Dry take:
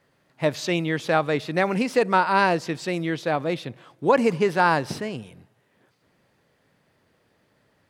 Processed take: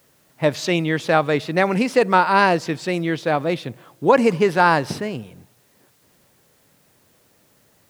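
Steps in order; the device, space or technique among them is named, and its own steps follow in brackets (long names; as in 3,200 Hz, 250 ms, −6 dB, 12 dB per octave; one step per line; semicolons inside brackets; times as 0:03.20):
plain cassette with noise reduction switched in (one half of a high-frequency compander decoder only; tape wow and flutter 25 cents; white noise bed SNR 40 dB)
level +4 dB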